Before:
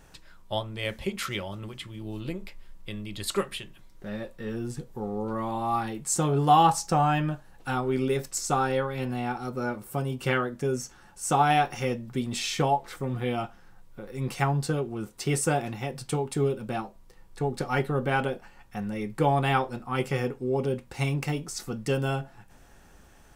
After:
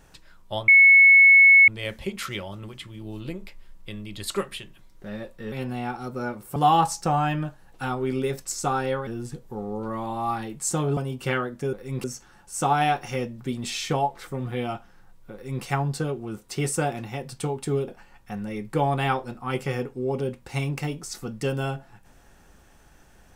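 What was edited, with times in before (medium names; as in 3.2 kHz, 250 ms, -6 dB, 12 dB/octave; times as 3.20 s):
0.68 s: add tone 2.2 kHz -9.5 dBFS 1.00 s
4.52–6.42 s: swap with 8.93–9.97 s
14.02–14.33 s: copy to 10.73 s
16.57–18.33 s: delete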